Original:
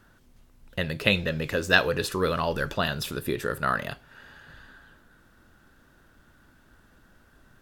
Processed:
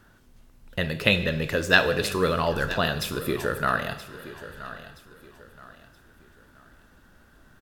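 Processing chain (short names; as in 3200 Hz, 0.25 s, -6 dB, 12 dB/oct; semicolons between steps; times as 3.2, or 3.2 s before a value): feedback echo 0.974 s, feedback 35%, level -15 dB; plate-style reverb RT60 0.99 s, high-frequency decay 1×, DRR 10 dB; gain +1.5 dB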